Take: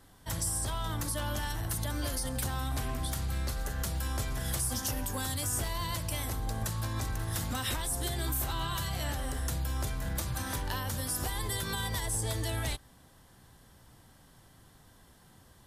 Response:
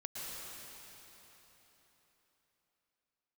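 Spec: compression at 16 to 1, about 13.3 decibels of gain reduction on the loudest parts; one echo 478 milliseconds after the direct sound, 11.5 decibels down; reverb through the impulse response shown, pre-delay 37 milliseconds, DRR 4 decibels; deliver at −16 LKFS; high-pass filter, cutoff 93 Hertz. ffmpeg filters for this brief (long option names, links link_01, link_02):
-filter_complex "[0:a]highpass=93,acompressor=threshold=-43dB:ratio=16,aecho=1:1:478:0.266,asplit=2[link_01][link_02];[1:a]atrim=start_sample=2205,adelay=37[link_03];[link_02][link_03]afir=irnorm=-1:irlink=0,volume=-4.5dB[link_04];[link_01][link_04]amix=inputs=2:normalize=0,volume=28.5dB"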